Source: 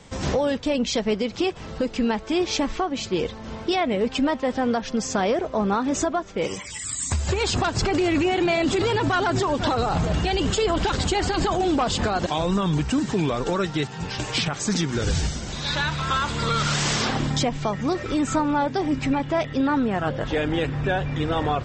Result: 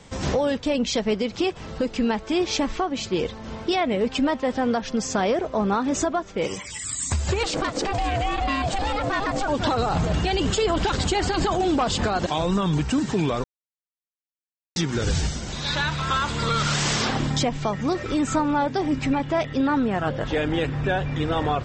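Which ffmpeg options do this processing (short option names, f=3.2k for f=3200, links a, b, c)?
-filter_complex "[0:a]asettb=1/sr,asplit=3[a][b][c];[a]atrim=end=7.434[d];[b]atrim=start=7.43:end=9.48,asetpts=PTS-STARTPTS,afade=t=in:d=0.004:c=qsin,afade=t=out:st=2.046:d=0.004:c=qsin,aeval=exprs='val(0)*sin(2*PI*400*n/s)':c=same[e];[c]atrim=start=9.476[f];[d][e]acrossfade=d=0.004:c1=hsin:c2=qsin[g];[g][f]acrossfade=d=0.004:c1=qsin:c2=hsin,asplit=3[h][i][j];[h]atrim=end=13.44,asetpts=PTS-STARTPTS,afade=t=out:st=13.436:d=0.004:c=hsin[k];[i]atrim=start=13.44:end=14.76,asetpts=PTS-STARTPTS,volume=0[l];[j]atrim=start=14.76,asetpts=PTS-STARTPTS,afade=t=in:d=0.004:c=hsin[m];[k][l][m]concat=n=3:v=0:a=1"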